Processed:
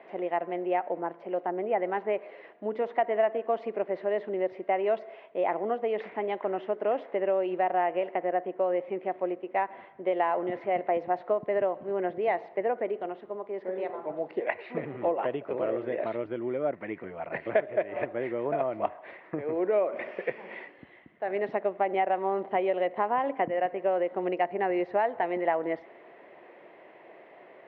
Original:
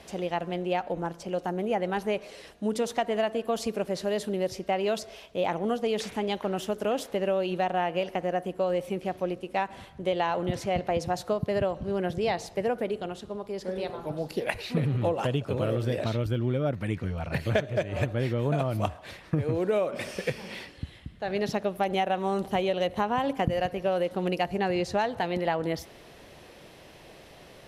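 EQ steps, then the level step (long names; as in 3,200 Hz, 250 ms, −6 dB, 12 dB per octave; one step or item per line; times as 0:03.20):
loudspeaker in its box 270–2,600 Hz, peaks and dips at 360 Hz +5 dB, 670 Hz +5 dB, 1,000 Hz +4 dB, 2,000 Hz +9 dB
parametric band 570 Hz +6.5 dB 2.9 octaves
−8.5 dB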